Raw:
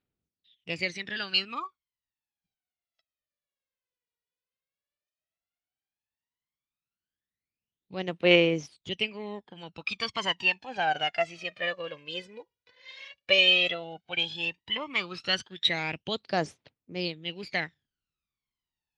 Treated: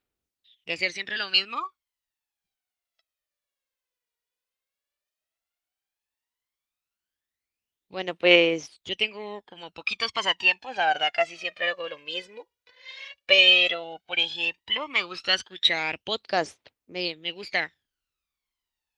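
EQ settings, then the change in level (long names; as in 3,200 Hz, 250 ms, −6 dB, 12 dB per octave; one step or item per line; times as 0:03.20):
parametric band 150 Hz −12.5 dB 1.6 octaves
+4.5 dB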